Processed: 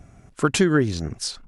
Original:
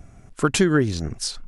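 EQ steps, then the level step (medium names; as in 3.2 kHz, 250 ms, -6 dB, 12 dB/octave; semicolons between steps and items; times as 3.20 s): high-pass 49 Hz 6 dB/octave; treble shelf 9.3 kHz -4 dB; 0.0 dB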